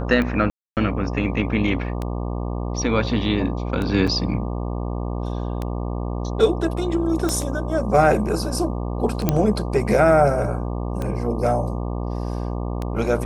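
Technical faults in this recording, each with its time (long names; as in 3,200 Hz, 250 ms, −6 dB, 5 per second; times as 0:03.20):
mains buzz 60 Hz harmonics 20 −26 dBFS
scratch tick 33 1/3 rpm −14 dBFS
0:00.50–0:00.77: drop-out 268 ms
0:04.07–0:04.08: drop-out 5.7 ms
0:07.29: click −9 dBFS
0:09.29: click −4 dBFS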